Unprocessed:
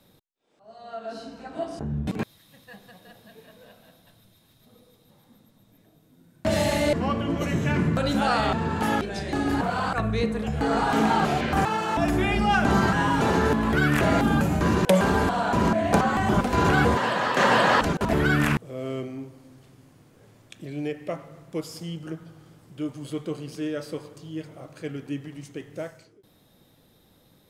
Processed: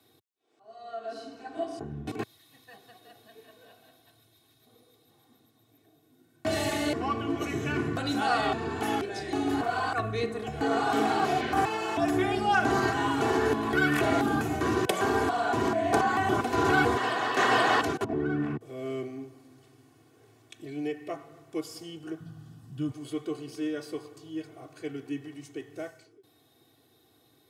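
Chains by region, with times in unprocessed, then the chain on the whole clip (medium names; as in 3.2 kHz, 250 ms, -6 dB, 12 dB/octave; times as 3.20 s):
18.04–18.61 s: CVSD coder 64 kbps + band-pass filter 200 Hz, Q 0.65
22.20–22.91 s: resonant low shelf 270 Hz +10.5 dB, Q 3 + band-stop 2.2 kHz, Q 7.2
whole clip: high-pass 100 Hz 24 dB/octave; comb 2.7 ms, depth 88%; trim -5.5 dB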